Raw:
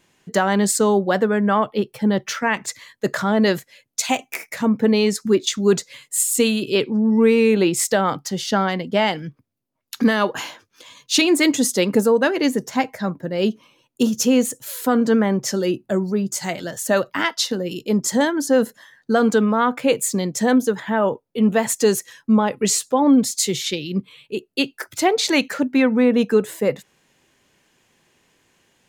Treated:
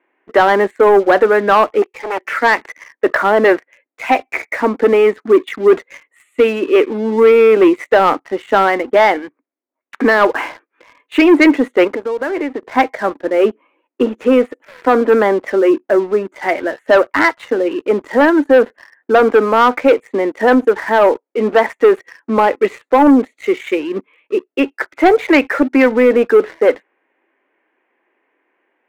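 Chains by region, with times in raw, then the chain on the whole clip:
1.82–2.25 tilt +4 dB/oct + fixed phaser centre 1000 Hz, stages 8 + Doppler distortion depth 0.58 ms
11.87–12.75 LPF 5700 Hz + compressor 8:1, threshold -26 dBFS
whole clip: elliptic band-pass 300–2200 Hz, stop band 40 dB; sample leveller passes 2; gain +4 dB

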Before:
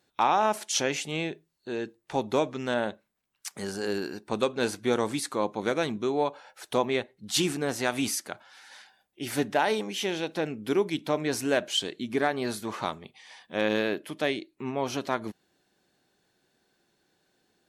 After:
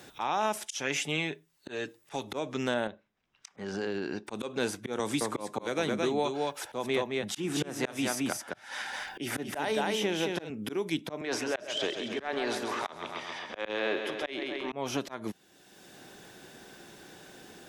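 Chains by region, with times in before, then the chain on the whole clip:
0.66–2.32 tilt shelf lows -5 dB, about 1100 Hz + comb 7 ms, depth 43%
2.87–4.27 compressor 3:1, threshold -33 dBFS + air absorption 180 m
4.99–10.5 echo 0.218 s -5.5 dB + three-band squash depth 40%
11.21–14.72 three-band isolator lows -16 dB, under 320 Hz, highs -17 dB, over 6300 Hz + transient shaper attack -11 dB, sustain +6 dB + feedback echo 0.133 s, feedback 55%, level -9 dB
whole clip: notch 4300 Hz, Q 9.8; auto swell 0.276 s; three-band squash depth 70%

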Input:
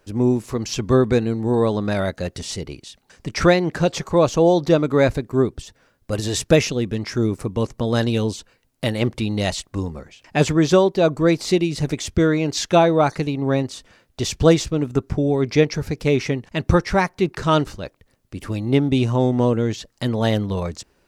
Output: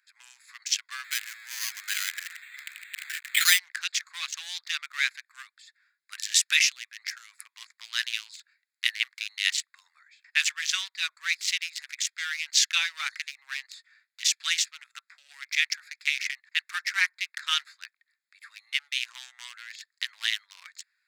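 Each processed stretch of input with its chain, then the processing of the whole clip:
1.04–3.59 switching spikes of -10 dBFS + weighting filter A + careless resampling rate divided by 8×, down filtered, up hold
whole clip: Wiener smoothing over 15 samples; steep high-pass 1800 Hz 36 dB/oct; gain +6 dB

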